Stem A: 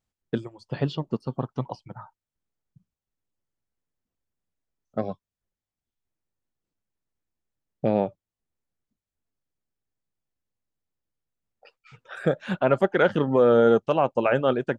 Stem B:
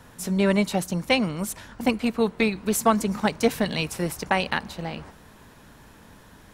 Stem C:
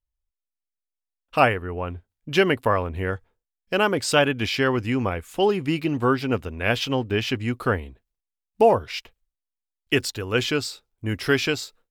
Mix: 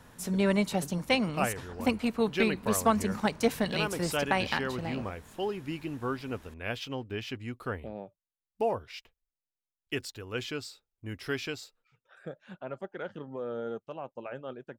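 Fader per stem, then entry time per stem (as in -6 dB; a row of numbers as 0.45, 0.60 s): -18.5, -5.0, -12.5 dB; 0.00, 0.00, 0.00 s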